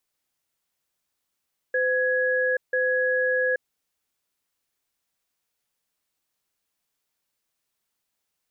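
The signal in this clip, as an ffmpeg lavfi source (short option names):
-f lavfi -i "aevalsrc='0.0708*(sin(2*PI*510*t)+sin(2*PI*1670*t))*clip(min(mod(t,0.99),0.83-mod(t,0.99))/0.005,0,1)':d=1.86:s=44100"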